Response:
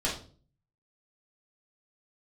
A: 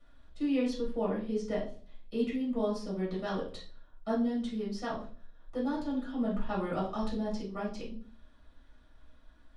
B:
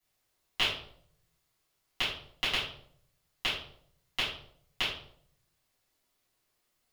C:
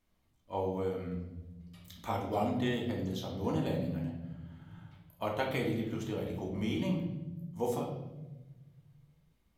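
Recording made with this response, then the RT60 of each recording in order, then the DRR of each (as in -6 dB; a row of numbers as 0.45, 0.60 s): A; 0.40, 0.65, 1.1 s; -6.0, -12.0, -2.0 dB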